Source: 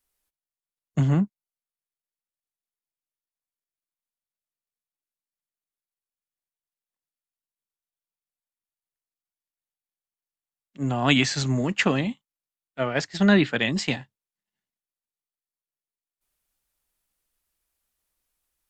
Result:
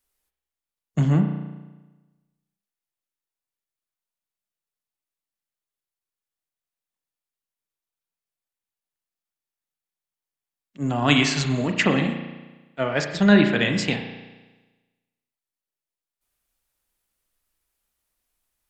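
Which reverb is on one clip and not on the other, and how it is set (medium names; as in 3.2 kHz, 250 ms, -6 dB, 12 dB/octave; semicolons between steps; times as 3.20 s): spring tank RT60 1.2 s, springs 34 ms, chirp 30 ms, DRR 5 dB; trim +1 dB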